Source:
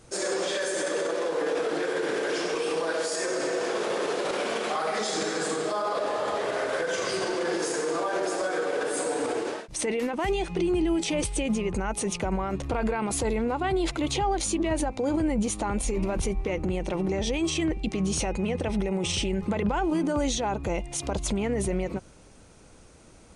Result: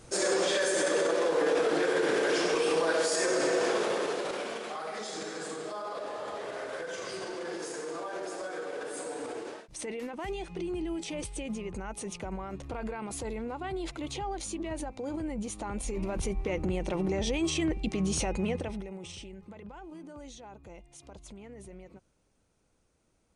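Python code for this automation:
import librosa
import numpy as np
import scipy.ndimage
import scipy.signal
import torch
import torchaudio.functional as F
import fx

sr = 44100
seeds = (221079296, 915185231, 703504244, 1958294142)

y = fx.gain(x, sr, db=fx.line((3.68, 1.0), (4.68, -9.5), (15.43, -9.5), (16.56, -2.5), (18.52, -2.5), (18.84, -13.0), (19.48, -20.0)))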